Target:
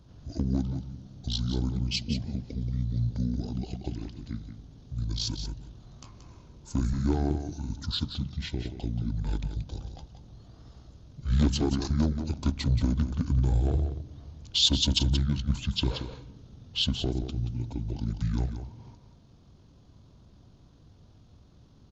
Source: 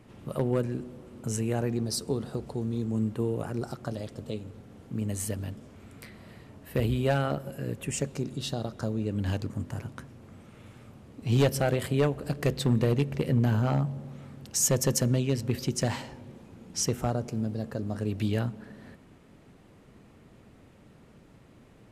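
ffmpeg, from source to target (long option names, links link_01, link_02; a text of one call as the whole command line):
ffmpeg -i in.wav -af "firequalizer=gain_entry='entry(230,0);entry(3800,-9);entry(6100,4)':delay=0.05:min_phase=1,asetrate=23361,aresample=44100,atempo=1.88775,aecho=1:1:179:0.355" out.wav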